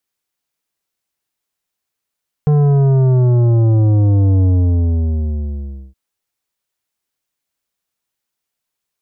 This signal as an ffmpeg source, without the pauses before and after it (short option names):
-f lavfi -i "aevalsrc='0.316*clip((3.47-t)/1.5,0,1)*tanh(3.35*sin(2*PI*150*3.47/log(65/150)*(exp(log(65/150)*t/3.47)-1)))/tanh(3.35)':d=3.47:s=44100"